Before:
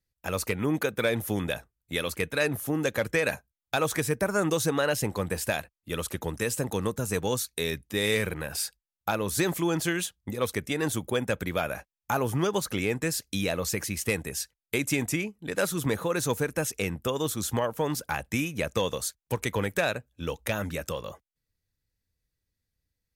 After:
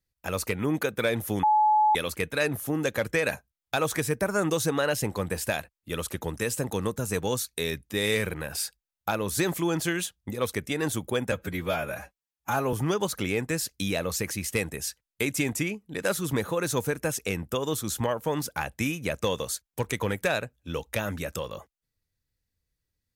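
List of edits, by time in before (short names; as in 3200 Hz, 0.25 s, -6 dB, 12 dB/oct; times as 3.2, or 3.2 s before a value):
1.43–1.95 bleep 854 Hz -17.5 dBFS
11.32–12.26 stretch 1.5×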